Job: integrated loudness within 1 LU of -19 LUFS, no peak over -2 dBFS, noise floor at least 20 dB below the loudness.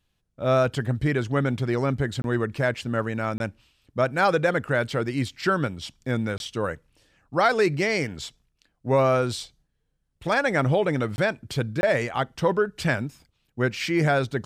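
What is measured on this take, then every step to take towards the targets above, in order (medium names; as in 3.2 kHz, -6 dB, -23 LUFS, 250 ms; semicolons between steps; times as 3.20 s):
dropouts 5; longest dropout 21 ms; loudness -25.0 LUFS; peak level -8.5 dBFS; loudness target -19.0 LUFS
-> interpolate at 2.22/3.38/6.38/11.16/11.81 s, 21 ms; trim +6 dB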